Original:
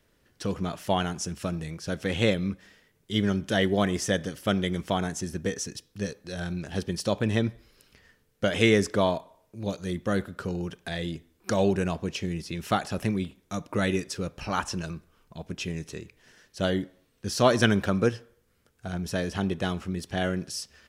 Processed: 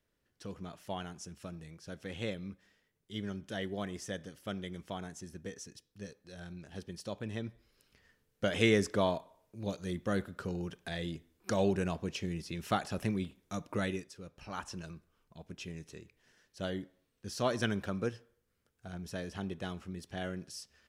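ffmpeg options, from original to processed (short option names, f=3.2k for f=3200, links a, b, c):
-af "volume=1dB,afade=t=in:st=7.41:d=1.11:silence=0.398107,afade=t=out:st=13.72:d=0.41:silence=0.251189,afade=t=in:st=14.13:d=0.64:silence=0.446684"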